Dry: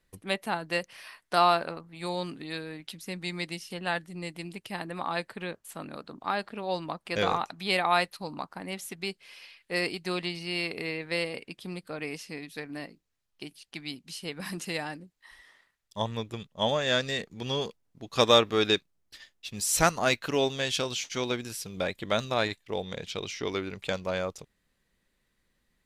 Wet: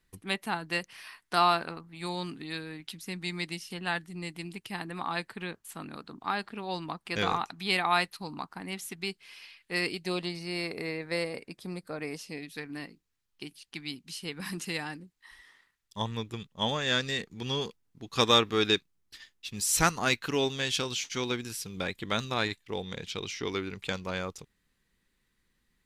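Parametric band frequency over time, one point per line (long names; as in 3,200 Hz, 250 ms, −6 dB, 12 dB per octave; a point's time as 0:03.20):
parametric band −9.5 dB 0.51 octaves
0:09.82 570 Hz
0:10.33 3,000 Hz
0:12.11 3,000 Hz
0:12.57 610 Hz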